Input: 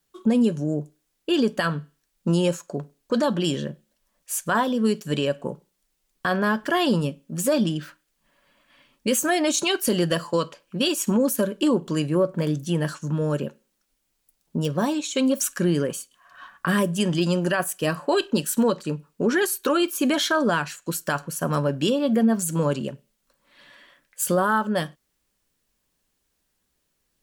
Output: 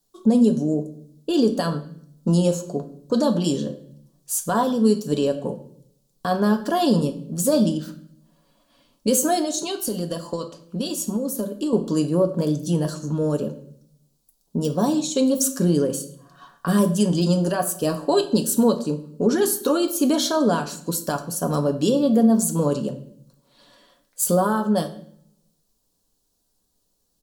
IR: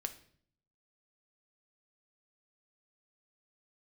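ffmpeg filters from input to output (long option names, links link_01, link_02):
-filter_complex "[0:a]firequalizer=gain_entry='entry(760,0);entry(2000,-16);entry(4100,1)':delay=0.05:min_phase=1,asettb=1/sr,asplit=3[link_01][link_02][link_03];[link_01]atrim=end=9.404[link_04];[link_02]atrim=start=9.4:end=11.73,asetpts=PTS-STARTPTS,afade=type=in:duration=0.004:curve=qsin,afade=type=out:start_time=2.326:duration=0.004:curve=qsin,acompressor=threshold=-26dB:ratio=6[link_05];[link_03]atrim=start=11.726[link_06];[link_04][link_05]acrossfade=duration=0.004:curve1=hsin:curve2=qsin[link_07];[link_07][link_06]acrossfade=duration=0.004:curve1=qsin:curve2=hsin[link_08];[1:a]atrim=start_sample=2205,asetrate=38367,aresample=44100[link_09];[link_08][link_09]afir=irnorm=-1:irlink=0,volume=3dB"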